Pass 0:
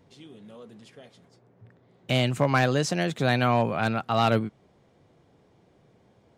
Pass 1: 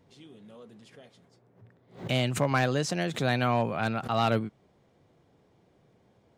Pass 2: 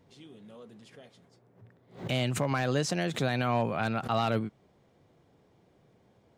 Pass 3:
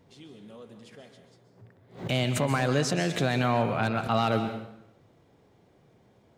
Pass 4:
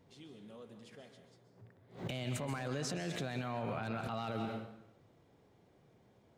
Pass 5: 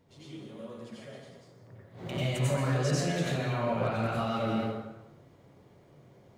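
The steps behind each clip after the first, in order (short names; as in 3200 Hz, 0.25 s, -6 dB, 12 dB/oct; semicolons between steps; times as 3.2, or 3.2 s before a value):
backwards sustainer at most 150 dB/s; gain -3.5 dB
limiter -17 dBFS, peak gain reduction 6 dB
plate-style reverb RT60 0.82 s, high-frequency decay 0.9×, pre-delay 0.115 s, DRR 8 dB; gain +2.5 dB
limiter -24 dBFS, peak gain reduction 11 dB; gain -5.5 dB
plate-style reverb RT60 0.77 s, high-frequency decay 0.65×, pre-delay 80 ms, DRR -7.5 dB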